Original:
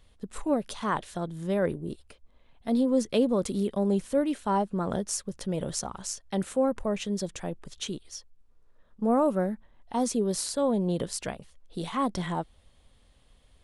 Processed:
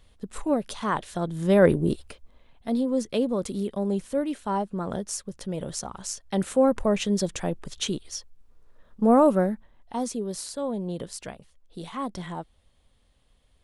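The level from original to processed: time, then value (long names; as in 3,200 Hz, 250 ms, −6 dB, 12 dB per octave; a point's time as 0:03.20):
0:01.04 +2 dB
0:01.82 +12 dB
0:02.81 −1 dB
0:05.77 −1 dB
0:06.74 +6 dB
0:09.28 +6 dB
0:10.21 −4 dB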